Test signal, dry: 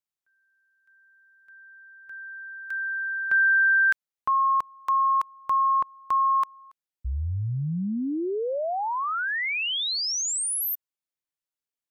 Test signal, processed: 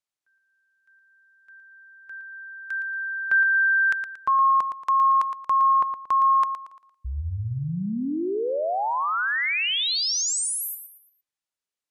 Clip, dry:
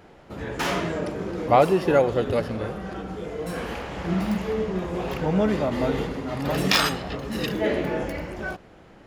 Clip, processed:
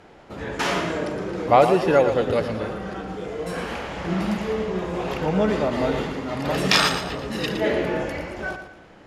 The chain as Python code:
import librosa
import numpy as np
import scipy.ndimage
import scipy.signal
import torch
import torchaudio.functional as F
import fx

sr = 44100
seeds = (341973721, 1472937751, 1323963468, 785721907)

y = scipy.signal.sosfilt(scipy.signal.butter(2, 10000.0, 'lowpass', fs=sr, output='sos'), x)
y = fx.low_shelf(y, sr, hz=270.0, db=-4.5)
y = fx.echo_feedback(y, sr, ms=115, feedback_pct=36, wet_db=-9.0)
y = y * 10.0 ** (2.5 / 20.0)